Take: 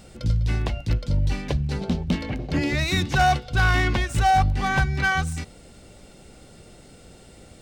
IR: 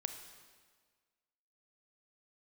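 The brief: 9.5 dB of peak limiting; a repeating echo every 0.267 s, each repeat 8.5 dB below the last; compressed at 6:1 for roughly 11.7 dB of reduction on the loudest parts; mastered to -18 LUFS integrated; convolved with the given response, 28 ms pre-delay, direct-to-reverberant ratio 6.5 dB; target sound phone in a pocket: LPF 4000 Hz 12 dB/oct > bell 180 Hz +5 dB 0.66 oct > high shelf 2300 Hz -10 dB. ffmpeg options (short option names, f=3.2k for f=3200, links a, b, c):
-filter_complex "[0:a]acompressor=threshold=-28dB:ratio=6,alimiter=level_in=2dB:limit=-24dB:level=0:latency=1,volume=-2dB,aecho=1:1:267|534|801|1068:0.376|0.143|0.0543|0.0206,asplit=2[a][b];[1:a]atrim=start_sample=2205,adelay=28[c];[b][c]afir=irnorm=-1:irlink=0,volume=-6dB[d];[a][d]amix=inputs=2:normalize=0,lowpass=4k,equalizer=f=180:t=o:w=0.66:g=5,highshelf=f=2.3k:g=-10,volume=15.5dB"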